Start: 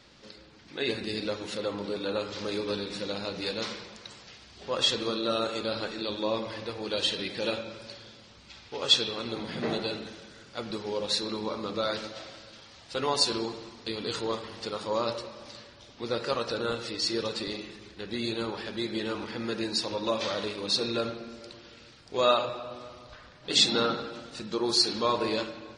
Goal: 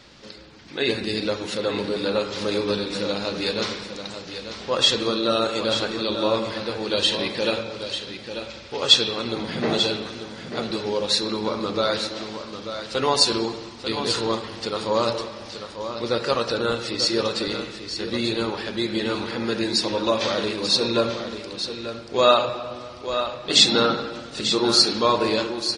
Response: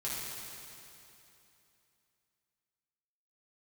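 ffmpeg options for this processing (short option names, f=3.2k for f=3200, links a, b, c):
-af "aecho=1:1:891:0.355,volume=7dB"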